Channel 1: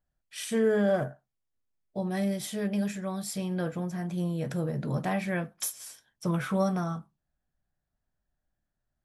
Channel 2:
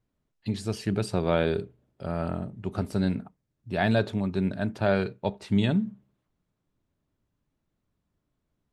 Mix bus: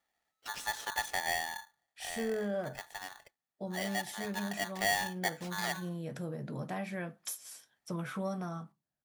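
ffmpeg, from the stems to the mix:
-filter_complex "[0:a]highpass=140,adelay=1650,volume=0.596[s0];[1:a]lowshelf=f=340:t=q:w=3:g=-13,aeval=exprs='val(0)*sgn(sin(2*PI*1300*n/s))':c=same,volume=3.16,afade=t=out:st=1.03:d=0.4:silence=0.266073,afade=t=in:st=3.94:d=0.66:silence=0.316228[s1];[s0][s1]amix=inputs=2:normalize=0,asoftclip=type=tanh:threshold=0.178,acompressor=threshold=0.01:ratio=1.5"

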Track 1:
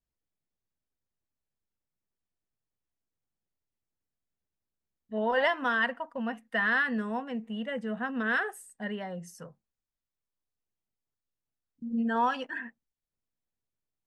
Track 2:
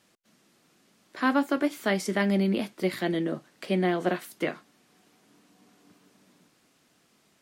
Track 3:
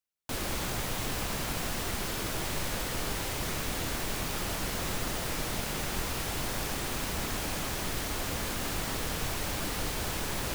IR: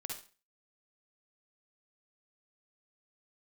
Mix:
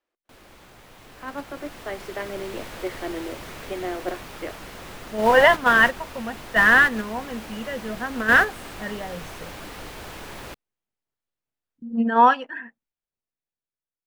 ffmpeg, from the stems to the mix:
-filter_complex "[0:a]volume=1.12[s0];[1:a]highpass=f=300:w=0.5412,highpass=f=300:w=1.3066,highshelf=f=2100:g=-7.5,volume=0.596[s1];[2:a]volume=0.531[s2];[s0][s1][s2]amix=inputs=3:normalize=0,agate=range=0.355:threshold=0.0447:ratio=16:detection=peak,bass=f=250:g=-5,treble=f=4000:g=-8,dynaudnorm=f=400:g=9:m=4.47"

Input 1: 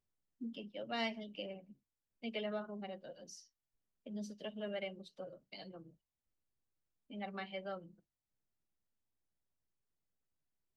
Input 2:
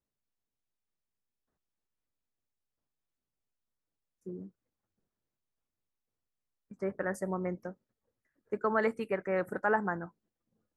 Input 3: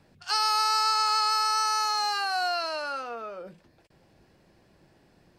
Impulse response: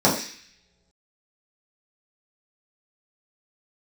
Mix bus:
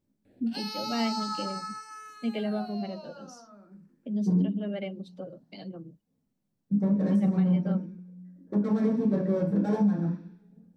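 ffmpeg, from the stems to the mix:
-filter_complex "[0:a]volume=1.19[s0];[1:a]lowshelf=f=200:g=10.5,asoftclip=type=hard:threshold=0.0224,flanger=delay=3.2:depth=3.3:regen=-47:speed=0.36:shape=sinusoidal,volume=0.224,asplit=2[s1][s2];[s2]volume=0.668[s3];[2:a]asplit=2[s4][s5];[s5]afreqshift=0.48[s6];[s4][s6]amix=inputs=2:normalize=1,adelay=250,volume=0.398,afade=t=out:st=1.11:d=0.75:silence=0.298538,asplit=2[s7][s8];[s8]volume=0.0668[s9];[3:a]atrim=start_sample=2205[s10];[s3][s9]amix=inputs=2:normalize=0[s11];[s11][s10]afir=irnorm=-1:irlink=0[s12];[s0][s1][s7][s12]amix=inputs=4:normalize=0,equalizer=f=210:w=0.61:g=13,alimiter=limit=0.141:level=0:latency=1:release=402"

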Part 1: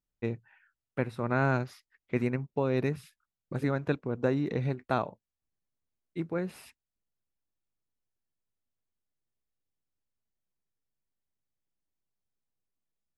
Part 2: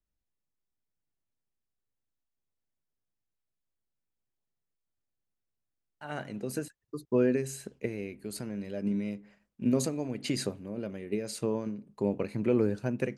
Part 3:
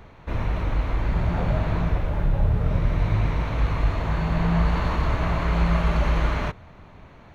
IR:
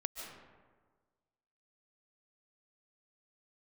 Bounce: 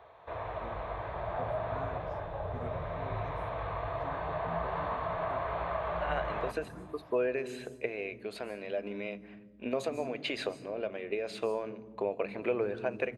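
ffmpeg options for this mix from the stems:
-filter_complex "[0:a]aeval=exprs='val(0)+0.00562*(sin(2*PI*60*n/s)+sin(2*PI*2*60*n/s)/2+sin(2*PI*3*60*n/s)/3+sin(2*PI*4*60*n/s)/4+sin(2*PI*5*60*n/s)/5)':c=same,asplit=2[s0][s1];[s1]afreqshift=2.6[s2];[s0][s2]amix=inputs=2:normalize=1,adelay=400,volume=0.119[s3];[1:a]volume=1.19,asplit=2[s4][s5];[s5]volume=0.158[s6];[2:a]bandreject=f=1400:w=13,acrossover=split=3400[s7][s8];[s8]acompressor=threshold=0.00112:ratio=4:attack=1:release=60[s9];[s7][s9]amix=inputs=2:normalize=0,equalizer=f=100:t=o:w=0.67:g=3,equalizer=f=250:t=o:w=0.67:g=-5,equalizer=f=2500:t=o:w=0.67:g=-11,volume=0.376,asplit=2[s10][s11];[s11]volume=0.282[s12];[s4][s10]amix=inputs=2:normalize=0,highpass=450,equalizer=f=460:t=q:w=4:g=4,equalizer=f=670:t=q:w=4:g=10,equalizer=f=1100:t=q:w=4:g=5,equalizer=f=1600:t=q:w=4:g=3,equalizer=f=2500:t=q:w=4:g=8,equalizer=f=3600:t=q:w=4:g=8,lowpass=f=3800:w=0.5412,lowpass=f=3800:w=1.3066,acompressor=threshold=0.0224:ratio=2,volume=1[s13];[3:a]atrim=start_sample=2205[s14];[s6][s12]amix=inputs=2:normalize=0[s15];[s15][s14]afir=irnorm=-1:irlink=0[s16];[s3][s13][s16]amix=inputs=3:normalize=0,highpass=73,lowshelf=f=380:g=4"

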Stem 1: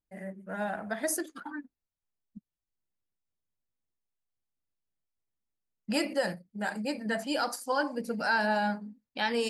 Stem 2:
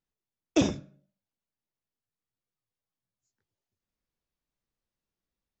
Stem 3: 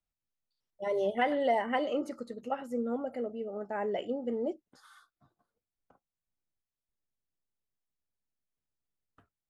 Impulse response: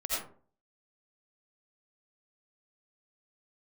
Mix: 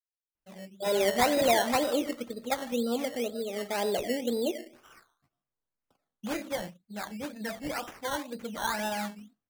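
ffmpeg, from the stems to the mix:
-filter_complex "[0:a]acrossover=split=9600[s0][s1];[s1]acompressor=threshold=0.00282:ratio=4:attack=1:release=60[s2];[s0][s2]amix=inputs=2:normalize=0,adelay=350,volume=0.596[s3];[1:a]adelay=800,volume=0.2[s4];[2:a]agate=range=0.0224:threshold=0.00158:ratio=3:detection=peak,volume=1.33,asplit=2[s5][s6];[s6]volume=0.15[s7];[3:a]atrim=start_sample=2205[s8];[s7][s8]afir=irnorm=-1:irlink=0[s9];[s3][s4][s5][s9]amix=inputs=4:normalize=0,acrusher=samples=14:mix=1:aa=0.000001:lfo=1:lforange=8.4:lforate=2"

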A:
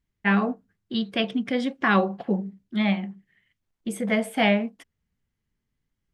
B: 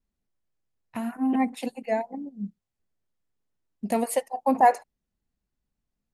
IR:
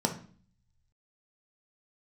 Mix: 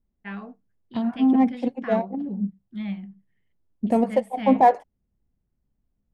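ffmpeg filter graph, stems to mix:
-filter_complex "[0:a]asubboost=boost=7.5:cutoff=200,volume=0.178[s0];[1:a]tiltshelf=f=970:g=7,adynamicsmooth=sensitivity=4:basefreq=3000,volume=1.06[s1];[s0][s1]amix=inputs=2:normalize=0"

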